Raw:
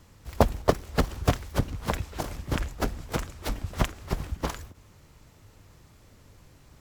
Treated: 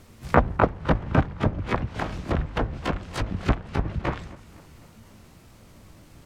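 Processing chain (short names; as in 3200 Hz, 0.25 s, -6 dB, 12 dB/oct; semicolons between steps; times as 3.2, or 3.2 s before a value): harmoniser +12 st -1 dB; treble ducked by the level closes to 1400 Hz, closed at -22.5 dBFS; speed mistake 44.1 kHz file played as 48 kHz; warbling echo 0.256 s, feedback 57%, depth 55 cents, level -21 dB; gain +1.5 dB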